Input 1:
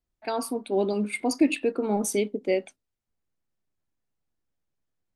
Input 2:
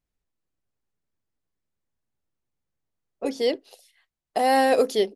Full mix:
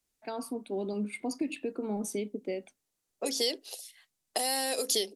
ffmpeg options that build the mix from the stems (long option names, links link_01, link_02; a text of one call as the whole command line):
ffmpeg -i stem1.wav -i stem2.wav -filter_complex "[0:a]volume=-9dB[link_01];[1:a]highpass=290,equalizer=frequency=9400:width_type=o:width=2.6:gain=14,acompressor=threshold=-20dB:ratio=6,volume=-1dB[link_02];[link_01][link_02]amix=inputs=2:normalize=0,acrossover=split=140|3000[link_03][link_04][link_05];[link_04]acompressor=threshold=-33dB:ratio=6[link_06];[link_03][link_06][link_05]amix=inputs=3:normalize=0,equalizer=frequency=170:width_type=o:width=2.7:gain=5" out.wav